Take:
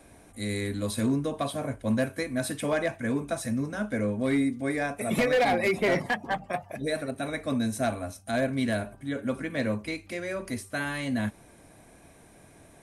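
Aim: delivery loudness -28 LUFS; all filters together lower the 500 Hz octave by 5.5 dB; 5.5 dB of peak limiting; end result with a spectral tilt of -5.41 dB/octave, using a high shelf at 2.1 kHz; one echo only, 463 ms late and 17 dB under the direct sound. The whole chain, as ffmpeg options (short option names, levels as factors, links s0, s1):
-af "equalizer=f=500:t=o:g=-6.5,highshelf=f=2100:g=-5,alimiter=limit=0.0631:level=0:latency=1,aecho=1:1:463:0.141,volume=1.88"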